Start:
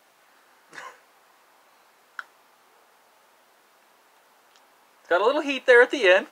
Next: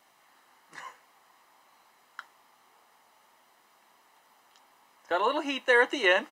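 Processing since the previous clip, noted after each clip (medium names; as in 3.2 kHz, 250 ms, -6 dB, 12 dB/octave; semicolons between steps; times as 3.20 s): comb 1 ms, depth 41%; trim -4.5 dB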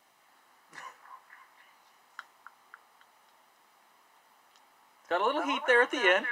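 repeats whose band climbs or falls 274 ms, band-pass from 1 kHz, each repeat 0.7 oct, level -3.5 dB; trim -1.5 dB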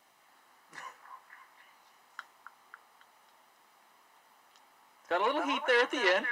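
transformer saturation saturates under 1.8 kHz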